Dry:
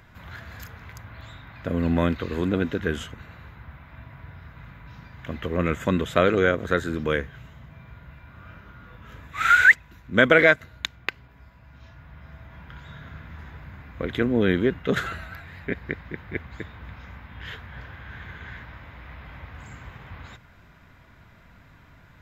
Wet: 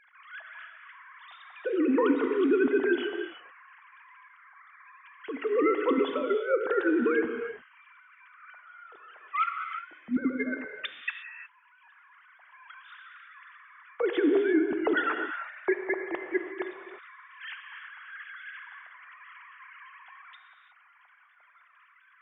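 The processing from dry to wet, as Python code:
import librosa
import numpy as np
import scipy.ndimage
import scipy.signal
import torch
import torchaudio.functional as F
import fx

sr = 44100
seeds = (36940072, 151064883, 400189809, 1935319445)

y = fx.sine_speech(x, sr)
y = fx.over_compress(y, sr, threshold_db=-26.0, ratio=-0.5)
y = fx.rev_gated(y, sr, seeds[0], gate_ms=380, shape='flat', drr_db=5.0)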